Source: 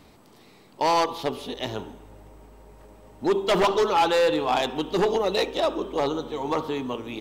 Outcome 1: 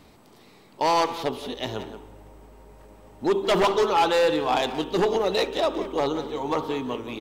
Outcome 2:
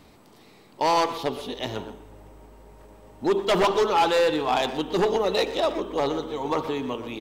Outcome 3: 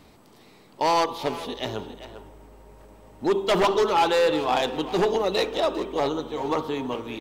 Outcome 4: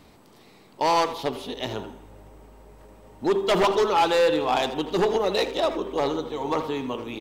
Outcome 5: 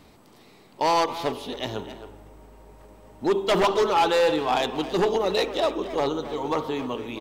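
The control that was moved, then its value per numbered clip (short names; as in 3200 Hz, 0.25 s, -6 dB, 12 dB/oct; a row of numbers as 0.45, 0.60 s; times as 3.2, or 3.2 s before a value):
speakerphone echo, time: 180, 120, 400, 80, 270 ms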